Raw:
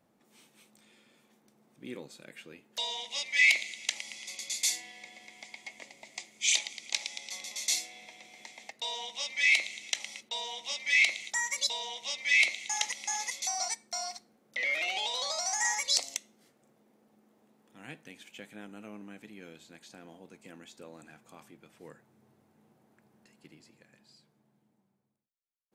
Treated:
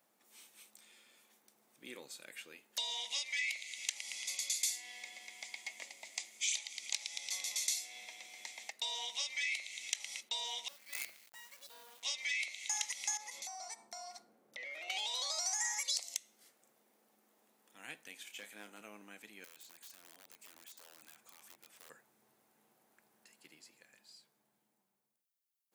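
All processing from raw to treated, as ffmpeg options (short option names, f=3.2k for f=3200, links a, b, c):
-filter_complex "[0:a]asettb=1/sr,asplit=3[a][b][c];[a]atrim=end=10.684[d];[b]atrim=start=10.68:end=12.03,asetpts=PTS-STARTPTS,afade=t=in:d=0.004:c=qsin,afade=t=out:st=1.346:d=0.004:c=qsin,bandpass=f=110:t=q:w=0.9,acrusher=bits=8:dc=4:mix=0:aa=0.000001,acontrast=63[e];[c]atrim=start=12.026[f];[d][e]acrossfade=d=0.004:c1=hsin:c2=qsin[g];[g][f]acrossfade=d=0.004:c1=qsin:c2=hsin,asettb=1/sr,asplit=3[h][i][j];[h]atrim=end=13.174[k];[i]atrim=start=13.17:end=14.9,asetpts=PTS-STARTPTS,afade=t=in:d=0.004:c=qsin,afade=t=out:st=1.726:d=0.004:c=qsin,tiltshelf=f=1.3k:g=8.5,bandreject=f=52.54:t=h:w=4,bandreject=f=105.08:t=h:w=4,bandreject=f=157.62:t=h:w=4,bandreject=f=210.16:t=h:w=4,bandreject=f=262.7:t=h:w=4,bandreject=f=315.24:t=h:w=4,bandreject=f=367.78:t=h:w=4,bandreject=f=420.32:t=h:w=4,bandreject=f=472.86:t=h:w=4,bandreject=f=525.4:t=h:w=4,bandreject=f=577.94:t=h:w=4,bandreject=f=630.48:t=h:w=4,bandreject=f=683.02:t=h:w=4,bandreject=f=735.56:t=h:w=4,bandreject=f=788.1:t=h:w=4,bandreject=f=840.64:t=h:w=4,bandreject=f=893.18:t=h:w=4,bandreject=f=945.72:t=h:w=4,bandreject=f=998.26:t=h:w=4,bandreject=f=1.0508k:t=h:w=4,bandreject=f=1.10334k:t=h:w=4,bandreject=f=1.15588k:t=h:w=4,bandreject=f=1.20842k:t=h:w=4,bandreject=f=1.26096k:t=h:w=4,bandreject=f=1.3135k:t=h:w=4,bandreject=f=1.36604k:t=h:w=4,bandreject=f=1.41858k:t=h:w=4,bandreject=f=1.47112k:t=h:w=4,acompressor=threshold=-44dB:ratio=4:attack=3.2:release=140:knee=1:detection=peak[l];[j]atrim=start=14.896[m];[k][l]acrossfade=d=0.004:c1=hsin:c2=qsin[n];[n][m]acrossfade=d=0.004:c1=qsin:c2=hsin,asettb=1/sr,asplit=3[o][p][q];[o]atrim=end=18.164[r];[p]atrim=start=18.16:end=18.81,asetpts=PTS-STARTPTS,afade=t=in:d=0.004:c=qsin,afade=t=out:st=0.646:d=0.004:c=qsin,highpass=180,asoftclip=type=hard:threshold=-39.5dB,asplit=2[s][t];[t]adelay=29,volume=-9.5dB[u];[s][u]amix=inputs=2:normalize=0,atrim=end_sample=28665[v];[q]atrim=start=18.806[w];[r][v]acrossfade=d=0.004:c1=hsin:c2=qsin[x];[x][w]acrossfade=d=0.004:c1=qsin:c2=hsin,asettb=1/sr,asplit=3[y][z][aa];[y]atrim=end=19.444[ab];[z]atrim=start=19.44:end=21.9,asetpts=PTS-STARTPTS,afade=t=in:d=0.004:c=qsin,afade=t=out:st=2.456:d=0.004:c=qsin,acompressor=threshold=-55dB:ratio=2.5:attack=3.2:release=140:knee=1:detection=peak,aeval=exprs='(mod(335*val(0)+1,2)-1)/335':c=same[ac];[aa]atrim=start=21.896[ad];[ab][ac]acrossfade=d=0.004:c1=hsin:c2=qsin[ae];[ae][ad]acrossfade=d=0.004:c1=qsin:c2=hsin,acompressor=threshold=-36dB:ratio=6,highpass=f=940:p=1,highshelf=f=8.1k:g=10"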